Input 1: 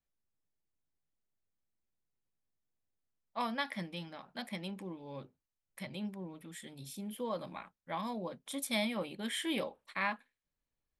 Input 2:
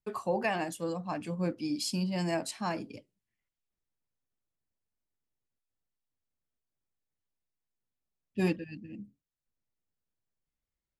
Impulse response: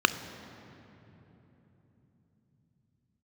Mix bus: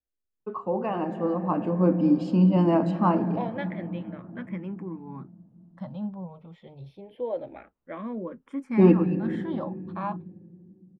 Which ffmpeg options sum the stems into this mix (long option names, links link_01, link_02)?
-filter_complex "[0:a]asplit=2[link_01][link_02];[link_02]afreqshift=-0.26[link_03];[link_01][link_03]amix=inputs=2:normalize=1,volume=-0.5dB[link_04];[1:a]adelay=400,volume=-4dB,asplit=2[link_05][link_06];[link_06]volume=-10.5dB[link_07];[2:a]atrim=start_sample=2205[link_08];[link_07][link_08]afir=irnorm=-1:irlink=0[link_09];[link_04][link_05][link_09]amix=inputs=3:normalize=0,lowpass=1200,dynaudnorm=framelen=200:gausssize=13:maxgain=10dB"